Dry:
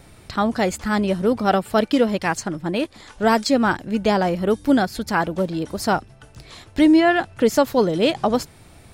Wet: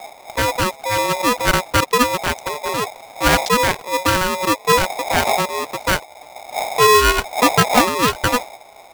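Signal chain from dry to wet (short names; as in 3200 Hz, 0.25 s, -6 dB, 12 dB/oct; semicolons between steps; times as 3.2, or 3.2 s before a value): Wiener smoothing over 41 samples; wind noise 110 Hz -31 dBFS; polarity switched at an audio rate 740 Hz; gain +2.5 dB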